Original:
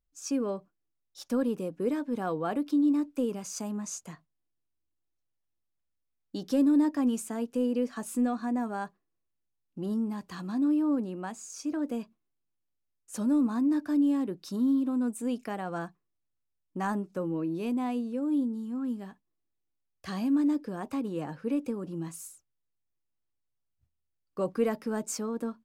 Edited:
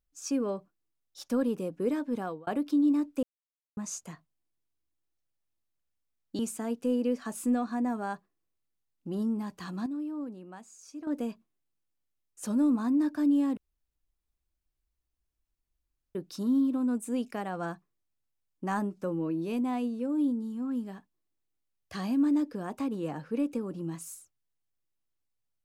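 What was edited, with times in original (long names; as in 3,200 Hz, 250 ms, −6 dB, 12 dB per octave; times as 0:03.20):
0:02.16–0:02.47: fade out
0:03.23–0:03.77: silence
0:06.39–0:07.10: remove
0:10.57–0:11.78: clip gain −9.5 dB
0:14.28: splice in room tone 2.58 s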